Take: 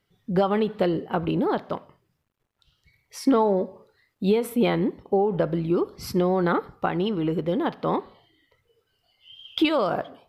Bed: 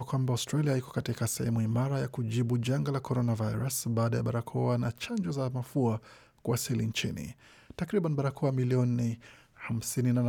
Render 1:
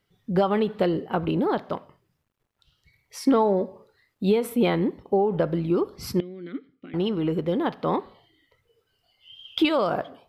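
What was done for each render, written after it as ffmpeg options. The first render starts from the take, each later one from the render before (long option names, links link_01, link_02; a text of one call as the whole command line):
ffmpeg -i in.wav -filter_complex "[0:a]asettb=1/sr,asplit=3[link_01][link_02][link_03];[link_01]atrim=end=6.204[link_04];[link_02]atrim=start=6.2:end=6.94,asetpts=PTS-STARTPTS,afade=type=in:duration=0.004:curve=qsin,afade=type=out:start_time=0.736:duration=0.004:curve=qsin,asplit=3[link_05][link_06][link_07];[link_05]bandpass=frequency=270:width_type=q:width=8,volume=0dB[link_08];[link_06]bandpass=frequency=2290:width_type=q:width=8,volume=-6dB[link_09];[link_07]bandpass=frequency=3010:width_type=q:width=8,volume=-9dB[link_10];[link_08][link_09][link_10]amix=inputs=3:normalize=0[link_11];[link_03]atrim=start=6.936[link_12];[link_04][link_11]acrossfade=duration=0.004:curve1=hsin:curve2=qsin[link_13];[link_13][link_12]acrossfade=duration=0.004:curve1=qsin:curve2=hsin" out.wav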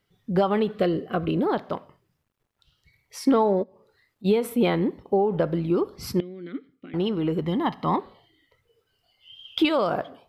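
ffmpeg -i in.wav -filter_complex "[0:a]asettb=1/sr,asplit=3[link_01][link_02][link_03];[link_01]atrim=end=0.714[link_04];[link_02]atrim=start=0.71:end=1.43,asetpts=PTS-STARTPTS,afade=type=in:duration=0.004:curve=qsin,afade=type=out:start_time=0.716:duration=0.004:curve=qsin,asuperstop=centerf=890:order=8:qfactor=4[link_05];[link_03]atrim=start=1.426[link_06];[link_04][link_05]acrossfade=duration=0.004:curve1=hsin:curve2=qsin[link_07];[link_07][link_06]acrossfade=duration=0.004:curve1=qsin:curve2=hsin,asplit=3[link_08][link_09][link_10];[link_08]afade=type=out:start_time=3.62:duration=0.02[link_11];[link_09]acompressor=threshold=-58dB:ratio=2:attack=3.2:release=140:knee=1:detection=peak,afade=type=in:start_time=3.62:duration=0.02,afade=type=out:start_time=4.24:duration=0.02[link_12];[link_10]afade=type=in:start_time=4.24:duration=0.02[link_13];[link_11][link_12][link_13]amix=inputs=3:normalize=0,asettb=1/sr,asplit=3[link_14][link_15][link_16];[link_14]atrim=end=7.414[link_17];[link_15]atrim=start=7.41:end=7.96,asetpts=PTS-STARTPTS,afade=type=in:duration=0.004:curve=qsin,afade=type=out:start_time=0.546:duration=0.004:curve=qsin,aecho=1:1:1:0.64,atrim=end_sample=24255[link_18];[link_16]atrim=start=7.956[link_19];[link_17][link_18]acrossfade=duration=0.004:curve1=hsin:curve2=qsin[link_20];[link_20][link_19]acrossfade=duration=0.004:curve1=qsin:curve2=hsin" out.wav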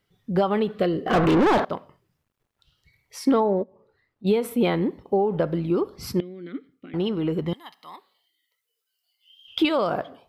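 ffmpeg -i in.wav -filter_complex "[0:a]asettb=1/sr,asplit=3[link_01][link_02][link_03];[link_01]atrim=end=1.064[link_04];[link_02]atrim=start=1.06:end=1.65,asetpts=PTS-STARTPTS,afade=type=in:duration=0.004:curve=qsin,afade=type=out:start_time=0.586:duration=0.004:curve=qsin,asplit=2[link_05][link_06];[link_06]highpass=frequency=720:poles=1,volume=33dB,asoftclip=type=tanh:threshold=-11dB[link_07];[link_05][link_07]amix=inputs=2:normalize=0,lowpass=frequency=1500:poles=1,volume=-6dB[link_08];[link_03]atrim=start=1.646[link_09];[link_04][link_08]acrossfade=duration=0.004:curve1=hsin:curve2=qsin[link_10];[link_10][link_09]acrossfade=duration=0.004:curve1=qsin:curve2=hsin,asettb=1/sr,asplit=3[link_11][link_12][link_13];[link_11]atrim=end=3.404[link_14];[link_12]atrim=start=3.4:end=4.27,asetpts=PTS-STARTPTS,afade=type=in:duration=0.004:curve=qsin,afade=type=out:start_time=0.866:duration=0.004:curve=qsin,lowpass=frequency=1400:poles=1[link_15];[link_13]atrim=start=4.266[link_16];[link_14][link_15]acrossfade=duration=0.004:curve1=hsin:curve2=qsin[link_17];[link_17][link_16]acrossfade=duration=0.004:curve1=qsin:curve2=hsin,asettb=1/sr,asplit=3[link_18][link_19][link_20];[link_18]atrim=end=7.534[link_21];[link_19]atrim=start=7.53:end=9.48,asetpts=PTS-STARTPTS,afade=type=in:duration=0.004:curve=qsin,afade=type=out:start_time=1.946:duration=0.004:curve=qsin,aderivative[link_22];[link_20]atrim=start=9.476[link_23];[link_21][link_22]acrossfade=duration=0.004:curve1=hsin:curve2=qsin[link_24];[link_24][link_23]acrossfade=duration=0.004:curve1=qsin:curve2=hsin" out.wav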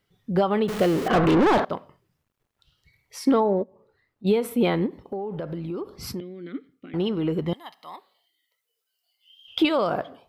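ffmpeg -i in.wav -filter_complex "[0:a]asettb=1/sr,asplit=3[link_01][link_02][link_03];[link_01]atrim=end=0.684[link_04];[link_02]atrim=start=0.68:end=1.08,asetpts=PTS-STARTPTS,afade=type=in:duration=0.004:curve=qsin,afade=type=out:start_time=0.396:duration=0.004:curve=qsin,aeval=exprs='val(0)+0.5*0.0501*sgn(val(0))':channel_layout=same[link_05];[link_03]atrim=start=1.076[link_06];[link_04][link_05]acrossfade=duration=0.004:curve1=hsin:curve2=qsin[link_07];[link_07][link_06]acrossfade=duration=0.004:curve1=qsin:curve2=hsin,asettb=1/sr,asplit=3[link_08][link_09][link_10];[link_08]atrim=end=4.864[link_11];[link_09]atrim=start=4.86:end=6.21,asetpts=PTS-STARTPTS,afade=type=in:duration=0.004:curve=qsin,afade=type=out:start_time=1.346:duration=0.004:curve=qsin,acompressor=threshold=-29dB:ratio=4:attack=3.2:release=140:knee=1:detection=peak[link_12];[link_10]atrim=start=6.206[link_13];[link_11][link_12]acrossfade=duration=0.004:curve1=hsin:curve2=qsin[link_14];[link_14][link_13]acrossfade=duration=0.004:curve1=qsin:curve2=hsin,asettb=1/sr,asplit=3[link_15][link_16][link_17];[link_15]atrim=end=7.494[link_18];[link_16]atrim=start=7.49:end=9.67,asetpts=PTS-STARTPTS,afade=type=in:duration=0.004:curve=qsin,afade=type=out:start_time=2.176:duration=0.004:curve=qsin,equalizer=frequency=650:width=2.3:gain=6.5[link_19];[link_17]atrim=start=9.666[link_20];[link_18][link_19]acrossfade=duration=0.004:curve1=hsin:curve2=qsin[link_21];[link_21][link_20]acrossfade=duration=0.004:curve1=qsin:curve2=hsin" out.wav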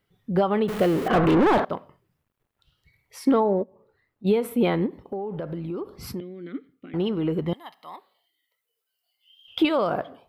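ffmpeg -i in.wav -af "equalizer=frequency=5700:width_type=o:width=1.4:gain=-5.5" out.wav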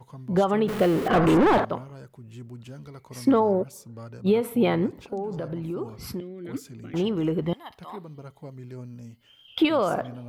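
ffmpeg -i in.wav -i bed.wav -filter_complex "[1:a]volume=-12.5dB[link_01];[0:a][link_01]amix=inputs=2:normalize=0" out.wav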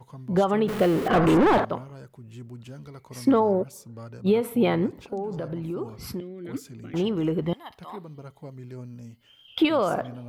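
ffmpeg -i in.wav -af anull out.wav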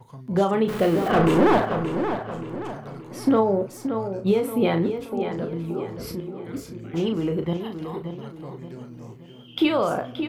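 ffmpeg -i in.wav -filter_complex "[0:a]asplit=2[link_01][link_02];[link_02]adelay=36,volume=-7dB[link_03];[link_01][link_03]amix=inputs=2:normalize=0,asplit=2[link_04][link_05];[link_05]adelay=576,lowpass=frequency=4400:poles=1,volume=-8dB,asplit=2[link_06][link_07];[link_07]adelay=576,lowpass=frequency=4400:poles=1,volume=0.43,asplit=2[link_08][link_09];[link_09]adelay=576,lowpass=frequency=4400:poles=1,volume=0.43,asplit=2[link_10][link_11];[link_11]adelay=576,lowpass=frequency=4400:poles=1,volume=0.43,asplit=2[link_12][link_13];[link_13]adelay=576,lowpass=frequency=4400:poles=1,volume=0.43[link_14];[link_04][link_06][link_08][link_10][link_12][link_14]amix=inputs=6:normalize=0" out.wav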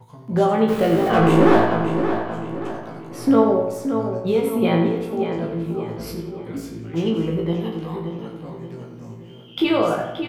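ffmpeg -i in.wav -filter_complex "[0:a]asplit=2[link_01][link_02];[link_02]adelay=18,volume=-4dB[link_03];[link_01][link_03]amix=inputs=2:normalize=0,asplit=2[link_04][link_05];[link_05]adelay=87,lowpass=frequency=4600:poles=1,volume=-6dB,asplit=2[link_06][link_07];[link_07]adelay=87,lowpass=frequency=4600:poles=1,volume=0.54,asplit=2[link_08][link_09];[link_09]adelay=87,lowpass=frequency=4600:poles=1,volume=0.54,asplit=2[link_10][link_11];[link_11]adelay=87,lowpass=frequency=4600:poles=1,volume=0.54,asplit=2[link_12][link_13];[link_13]adelay=87,lowpass=frequency=4600:poles=1,volume=0.54,asplit=2[link_14][link_15];[link_15]adelay=87,lowpass=frequency=4600:poles=1,volume=0.54,asplit=2[link_16][link_17];[link_17]adelay=87,lowpass=frequency=4600:poles=1,volume=0.54[link_18];[link_06][link_08][link_10][link_12][link_14][link_16][link_18]amix=inputs=7:normalize=0[link_19];[link_04][link_19]amix=inputs=2:normalize=0" out.wav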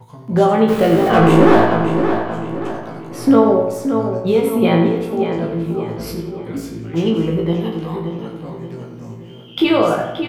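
ffmpeg -i in.wav -af "volume=4.5dB,alimiter=limit=-1dB:level=0:latency=1" out.wav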